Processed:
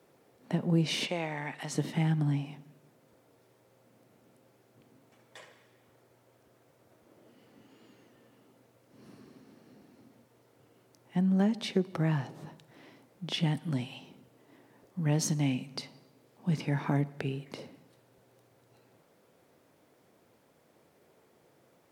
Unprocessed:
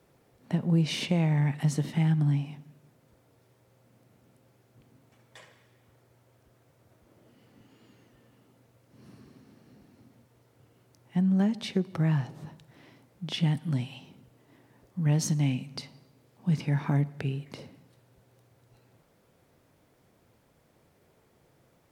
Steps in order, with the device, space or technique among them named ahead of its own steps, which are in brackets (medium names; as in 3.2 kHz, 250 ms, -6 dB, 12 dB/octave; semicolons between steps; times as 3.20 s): 1.07–1.75 s: frequency weighting A; filter by subtraction (in parallel: low-pass 360 Hz 12 dB/octave + polarity flip)